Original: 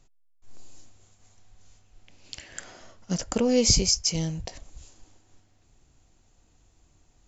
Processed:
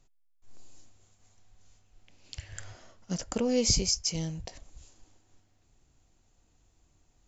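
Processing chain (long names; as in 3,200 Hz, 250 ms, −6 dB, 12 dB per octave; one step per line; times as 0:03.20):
0:02.37–0:02.77: low shelf with overshoot 150 Hz +12 dB, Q 3
level −5 dB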